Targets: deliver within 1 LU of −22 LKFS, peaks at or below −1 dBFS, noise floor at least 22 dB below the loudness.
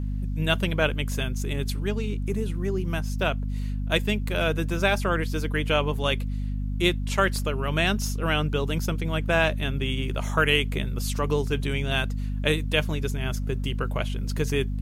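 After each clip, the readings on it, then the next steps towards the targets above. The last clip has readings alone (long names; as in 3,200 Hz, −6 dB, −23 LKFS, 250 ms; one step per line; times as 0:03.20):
mains hum 50 Hz; hum harmonics up to 250 Hz; level of the hum −26 dBFS; integrated loudness −26.0 LKFS; sample peak −7.5 dBFS; target loudness −22.0 LKFS
→ hum removal 50 Hz, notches 5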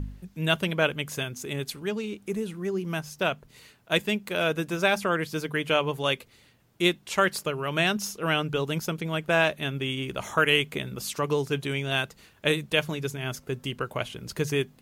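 mains hum none found; integrated loudness −27.5 LKFS; sample peak −8.5 dBFS; target loudness −22.0 LKFS
→ level +5.5 dB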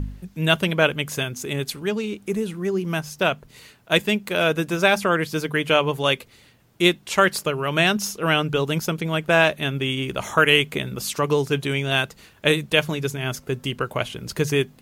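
integrated loudness −22.0 LKFS; sample peak −3.0 dBFS; background noise floor −53 dBFS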